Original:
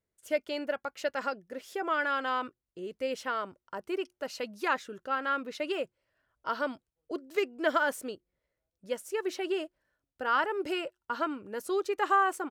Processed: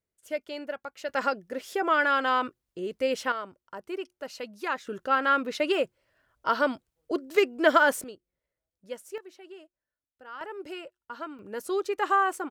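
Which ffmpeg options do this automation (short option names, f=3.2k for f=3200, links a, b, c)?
-af "asetnsamples=n=441:p=0,asendcmd='1.09 volume volume 6dB;3.32 volume volume -1.5dB;4.87 volume volume 7dB;8.04 volume volume -4dB;9.18 volume volume -15dB;10.41 volume volume -6.5dB;11.39 volume volume 1.5dB',volume=-2.5dB"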